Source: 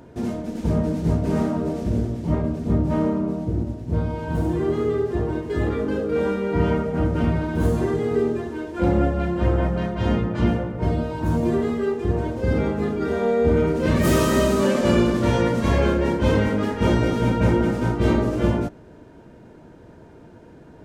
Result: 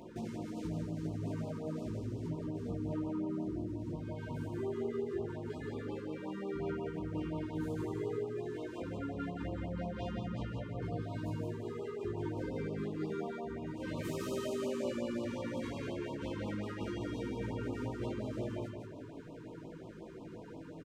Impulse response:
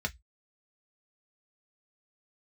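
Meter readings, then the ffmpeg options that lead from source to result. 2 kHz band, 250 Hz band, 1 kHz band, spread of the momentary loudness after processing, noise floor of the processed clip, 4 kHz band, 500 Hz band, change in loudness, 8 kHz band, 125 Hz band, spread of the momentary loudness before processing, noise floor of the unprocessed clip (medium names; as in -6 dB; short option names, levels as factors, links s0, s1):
-18.0 dB, -16.5 dB, -18.5 dB, 5 LU, -49 dBFS, -16.5 dB, -17.0 dB, -17.5 dB, -18.0 dB, -17.5 dB, 6 LU, -46 dBFS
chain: -af "flanger=delay=5.6:depth=2.7:regen=-42:speed=0.3:shape=triangular,bandreject=f=50:t=h:w=6,bandreject=f=100:t=h:w=6,bandreject=f=150:t=h:w=6,bandreject=f=200:t=h:w=6,alimiter=limit=0.106:level=0:latency=1:release=292,aresample=32000,aresample=44100,lowshelf=f=64:g=-10,acompressor=threshold=0.00794:ratio=3,equalizer=f=11000:t=o:w=0.25:g=-5,aecho=1:1:170|340|510|680|850:0.631|0.227|0.0818|0.0294|0.0106,flanger=delay=18.5:depth=2.2:speed=0.1,afftfilt=real='re*(1-between(b*sr/1024,630*pow(1800/630,0.5+0.5*sin(2*PI*5.6*pts/sr))/1.41,630*pow(1800/630,0.5+0.5*sin(2*PI*5.6*pts/sr))*1.41))':imag='im*(1-between(b*sr/1024,630*pow(1800/630,0.5+0.5*sin(2*PI*5.6*pts/sr))/1.41,630*pow(1800/630,0.5+0.5*sin(2*PI*5.6*pts/sr))*1.41))':win_size=1024:overlap=0.75,volume=1.68"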